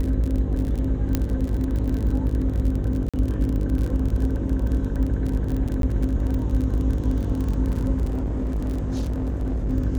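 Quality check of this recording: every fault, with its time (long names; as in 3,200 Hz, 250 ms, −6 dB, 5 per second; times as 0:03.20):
mains buzz 50 Hz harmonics 11 −27 dBFS
surface crackle 35 per second −27 dBFS
0:01.15: click −8 dBFS
0:03.09–0:03.14: drop-out 46 ms
0:05.82–0:05.83: drop-out 12 ms
0:08.09–0:09.70: clipping −21.5 dBFS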